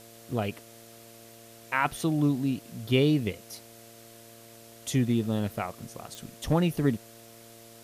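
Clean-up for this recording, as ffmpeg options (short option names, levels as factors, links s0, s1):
-af "adeclick=t=4,bandreject=f=114.8:t=h:w=4,bandreject=f=229.6:t=h:w=4,bandreject=f=344.4:t=h:w=4,bandreject=f=459.2:t=h:w=4,bandreject=f=574:t=h:w=4,bandreject=f=688.8:t=h:w=4,afwtdn=0.0025"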